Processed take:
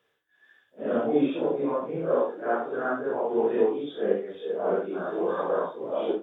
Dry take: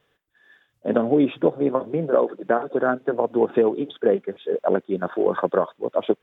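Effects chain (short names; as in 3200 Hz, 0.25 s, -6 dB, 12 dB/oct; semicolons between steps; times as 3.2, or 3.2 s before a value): phase scrambler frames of 0.2 s; HPF 230 Hz 6 dB/oct; gain -4 dB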